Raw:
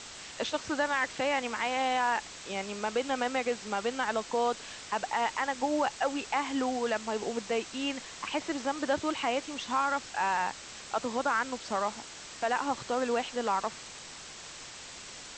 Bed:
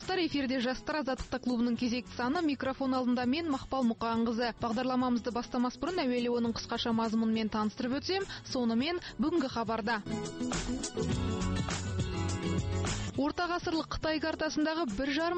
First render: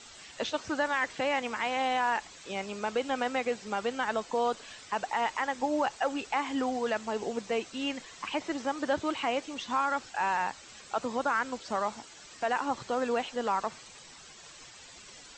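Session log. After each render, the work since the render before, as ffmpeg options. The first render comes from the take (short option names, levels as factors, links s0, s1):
-af "afftdn=nr=10:nf=-46"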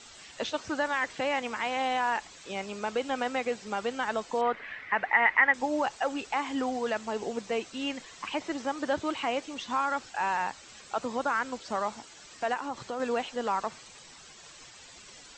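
-filter_complex "[0:a]asettb=1/sr,asplit=3[s0][s1][s2];[s0]atrim=end=4.414[s3];[s1]atrim=start=4.41:end=5.54,asetpts=PTS-STARTPTS,afade=t=in:d=0.004:c=qsin,afade=t=out:st=1.126:d=0.004:c=qsin,lowpass=f=2000:t=q:w=6.2[s4];[s2]atrim=start=5.536[s5];[s3][s4]acrossfade=d=0.004:c1=hsin:c2=qsin[s6];[s6][s5]acrossfade=d=0.004:c1=qsin:c2=hsin,asettb=1/sr,asplit=3[s7][s8][s9];[s7]atrim=end=12.544[s10];[s8]atrim=start=12.54:end=13,asetpts=PTS-STARTPTS,afade=t=in:d=0.004:c=qsin,afade=t=out:st=0.456:d=0.004:c=qsin,acompressor=threshold=0.0224:ratio=2:attack=3.2:release=140:knee=1:detection=peak[s11];[s9]atrim=start=12.996[s12];[s10][s11]acrossfade=d=0.004:c1=hsin:c2=qsin[s13];[s13][s12]acrossfade=d=0.004:c1=qsin:c2=hsin"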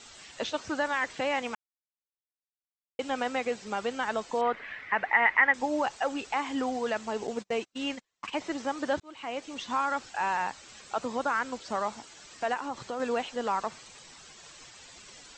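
-filter_complex "[0:a]asettb=1/sr,asplit=3[s0][s1][s2];[s0]atrim=end=7.274[s3];[s1]atrim=start=7.27:end=8.39,asetpts=PTS-STARTPTS,afade=t=in:d=0.004:c=qsin,afade=t=out:st=1.116:d=0.004:c=qsin,agate=range=0.0178:threshold=0.0112:ratio=16:release=100:detection=peak[s4];[s2]atrim=start=8.386[s5];[s3][s4]acrossfade=d=0.004:c1=hsin:c2=qsin[s6];[s6][s5]acrossfade=d=0.004:c1=qsin:c2=hsin,asplit=4[s7][s8][s9][s10];[s7]atrim=end=1.55,asetpts=PTS-STARTPTS,afade=t=out:st=1.546:d=0.004:c=hsin[s11];[s8]atrim=start=1.55:end=2.99,asetpts=PTS-STARTPTS,volume=0[s12];[s9]atrim=start=2.99:end=9,asetpts=PTS-STARTPTS,afade=t=in:d=0.004:c=hsin,afade=t=out:st=6.006:d=0.004:c=hsin[s13];[s10]atrim=start=9,asetpts=PTS-STARTPTS,afade=t=in:d=0.59[s14];[s11][s12][s13][s14]concat=n=4:v=0:a=1"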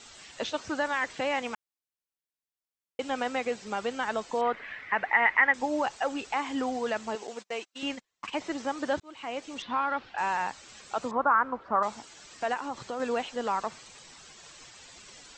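-filter_complex "[0:a]asettb=1/sr,asplit=3[s0][s1][s2];[s0]atrim=end=7.154[s3];[s1]atrim=start=7.15:end=7.83,asetpts=PTS-STARTPTS,afade=t=in:d=0.004:c=qsin,afade=t=out:st=0.676:d=0.004:c=qsin,highpass=f=760:p=1[s4];[s2]atrim=start=7.826[s5];[s3][s4]acrossfade=d=0.004:c1=hsin:c2=qsin[s6];[s6][s5]acrossfade=d=0.004:c1=qsin:c2=hsin,asettb=1/sr,asplit=3[s7][s8][s9];[s7]atrim=end=9.624[s10];[s8]atrim=start=9.62:end=10.18,asetpts=PTS-STARTPTS,afade=t=in:d=0.004:c=qsin,afade=t=out:st=0.556:d=0.004:c=qsin,lowpass=f=3800:w=0.5412,lowpass=f=3800:w=1.3066[s11];[s9]atrim=start=10.176[s12];[s10][s11]acrossfade=d=0.004:c1=hsin:c2=qsin[s13];[s13][s12]acrossfade=d=0.004:c1=qsin:c2=hsin,asettb=1/sr,asplit=3[s14][s15][s16];[s14]atrim=end=11.114[s17];[s15]atrim=start=11.11:end=11.83,asetpts=PTS-STARTPTS,afade=t=in:d=0.004:c=qsin,afade=t=out:st=0.716:d=0.004:c=qsin,lowpass=f=1200:t=q:w=2.8[s18];[s16]atrim=start=11.826[s19];[s17][s18]acrossfade=d=0.004:c1=hsin:c2=qsin[s20];[s20][s19]acrossfade=d=0.004:c1=qsin:c2=hsin"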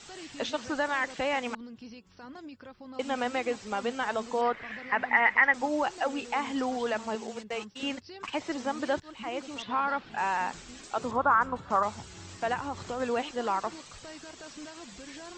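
-filter_complex "[1:a]volume=0.188[s0];[0:a][s0]amix=inputs=2:normalize=0"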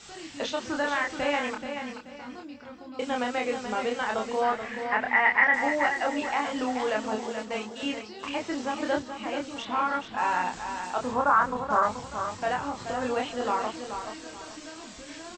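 -filter_complex "[0:a]asplit=2[s0][s1];[s1]adelay=28,volume=0.708[s2];[s0][s2]amix=inputs=2:normalize=0,aecho=1:1:430|860|1290|1720:0.398|0.123|0.0383|0.0119"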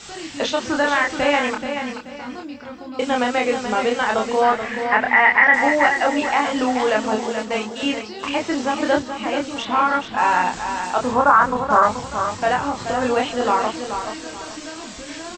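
-af "volume=2.82,alimiter=limit=0.708:level=0:latency=1"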